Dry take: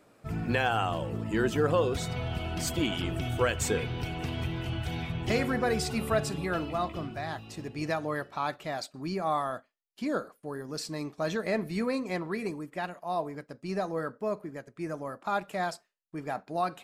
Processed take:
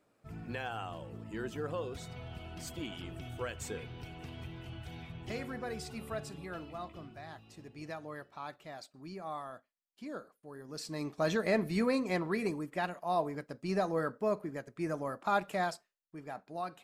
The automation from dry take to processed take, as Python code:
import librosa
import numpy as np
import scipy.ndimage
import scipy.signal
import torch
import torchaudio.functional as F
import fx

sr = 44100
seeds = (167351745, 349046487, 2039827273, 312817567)

y = fx.gain(x, sr, db=fx.line((10.47, -12.0), (11.14, 0.0), (15.51, 0.0), (16.17, -9.0)))